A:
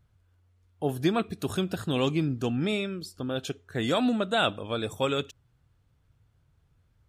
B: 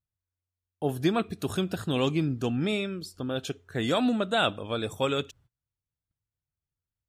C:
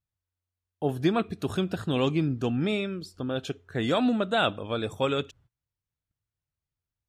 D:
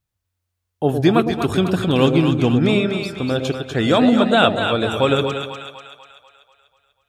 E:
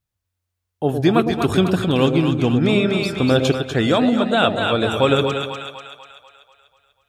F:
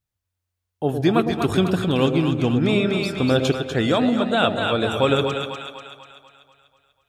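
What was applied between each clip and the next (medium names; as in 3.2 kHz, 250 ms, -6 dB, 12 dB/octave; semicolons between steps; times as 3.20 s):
gate -57 dBFS, range -26 dB
treble shelf 6.5 kHz -10.5 dB; trim +1 dB
two-band feedback delay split 700 Hz, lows 109 ms, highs 245 ms, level -5.5 dB; trim +9 dB
gain riding 0.5 s
algorithmic reverb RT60 1.8 s, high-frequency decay 0.3×, pre-delay 75 ms, DRR 19 dB; trim -2.5 dB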